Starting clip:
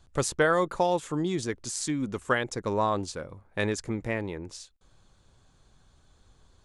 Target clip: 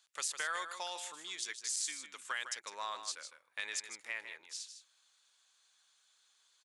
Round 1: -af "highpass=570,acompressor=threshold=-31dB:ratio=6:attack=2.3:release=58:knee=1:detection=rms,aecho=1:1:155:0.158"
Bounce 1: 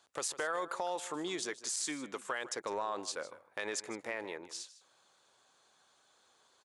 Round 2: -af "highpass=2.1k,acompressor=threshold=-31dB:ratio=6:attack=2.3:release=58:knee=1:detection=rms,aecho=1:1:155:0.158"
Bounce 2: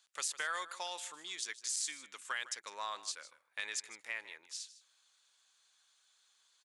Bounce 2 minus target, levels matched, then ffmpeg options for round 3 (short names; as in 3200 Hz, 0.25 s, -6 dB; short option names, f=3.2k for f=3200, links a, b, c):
echo-to-direct -6.5 dB
-af "highpass=2.1k,acompressor=threshold=-31dB:ratio=6:attack=2.3:release=58:knee=1:detection=rms,aecho=1:1:155:0.335"